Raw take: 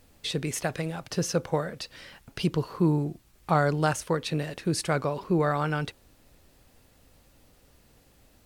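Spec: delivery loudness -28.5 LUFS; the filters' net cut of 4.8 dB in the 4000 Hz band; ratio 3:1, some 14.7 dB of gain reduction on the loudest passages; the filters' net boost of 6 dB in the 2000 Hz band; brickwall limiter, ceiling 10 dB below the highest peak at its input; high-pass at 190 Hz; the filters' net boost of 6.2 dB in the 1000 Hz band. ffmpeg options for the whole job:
-af "highpass=190,equalizer=f=1k:t=o:g=7,equalizer=f=2k:t=o:g=7,equalizer=f=4k:t=o:g=-9,acompressor=threshold=-34dB:ratio=3,volume=11dB,alimiter=limit=-15.5dB:level=0:latency=1"

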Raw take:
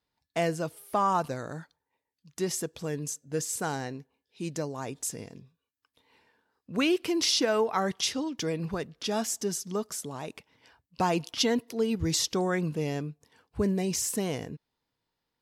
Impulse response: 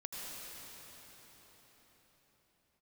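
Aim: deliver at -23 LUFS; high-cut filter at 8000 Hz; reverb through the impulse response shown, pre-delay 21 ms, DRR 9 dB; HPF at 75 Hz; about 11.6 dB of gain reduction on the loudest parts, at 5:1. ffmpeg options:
-filter_complex "[0:a]highpass=75,lowpass=8k,acompressor=threshold=-35dB:ratio=5,asplit=2[a][b];[1:a]atrim=start_sample=2205,adelay=21[c];[b][c]afir=irnorm=-1:irlink=0,volume=-9.5dB[d];[a][d]amix=inputs=2:normalize=0,volume=15.5dB"

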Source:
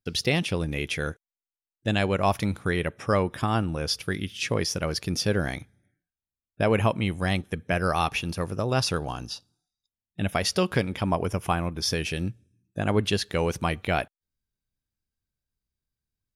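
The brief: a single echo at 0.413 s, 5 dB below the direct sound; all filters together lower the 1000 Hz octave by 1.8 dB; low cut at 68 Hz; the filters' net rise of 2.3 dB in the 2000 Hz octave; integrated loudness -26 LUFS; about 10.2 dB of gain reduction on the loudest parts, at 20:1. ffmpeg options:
-af "highpass=68,equalizer=f=1k:t=o:g=-3.5,equalizer=f=2k:t=o:g=4,acompressor=threshold=-28dB:ratio=20,aecho=1:1:413:0.562,volume=7.5dB"

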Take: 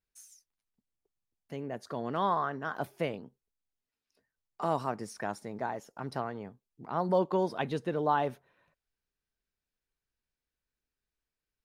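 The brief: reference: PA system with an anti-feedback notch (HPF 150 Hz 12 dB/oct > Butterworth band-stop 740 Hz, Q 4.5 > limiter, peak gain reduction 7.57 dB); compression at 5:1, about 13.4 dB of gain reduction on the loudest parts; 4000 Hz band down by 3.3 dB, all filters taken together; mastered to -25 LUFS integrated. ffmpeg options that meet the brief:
-af "equalizer=f=4k:t=o:g=-4.5,acompressor=threshold=-37dB:ratio=5,highpass=150,asuperstop=centerf=740:order=8:qfactor=4.5,volume=21dB,alimiter=limit=-13dB:level=0:latency=1"

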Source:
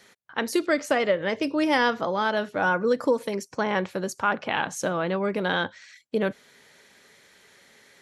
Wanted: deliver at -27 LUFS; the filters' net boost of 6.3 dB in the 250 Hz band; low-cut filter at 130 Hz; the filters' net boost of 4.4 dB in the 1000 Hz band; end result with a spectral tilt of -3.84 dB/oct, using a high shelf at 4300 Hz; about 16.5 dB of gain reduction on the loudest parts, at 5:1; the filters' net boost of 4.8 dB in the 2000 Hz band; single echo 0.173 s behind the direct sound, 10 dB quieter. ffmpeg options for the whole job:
-af "highpass=130,equalizer=f=250:t=o:g=8.5,equalizer=f=1k:t=o:g=4,equalizer=f=2k:t=o:g=5.5,highshelf=f=4.3k:g=-5.5,acompressor=threshold=-33dB:ratio=5,aecho=1:1:173:0.316,volume=9dB"

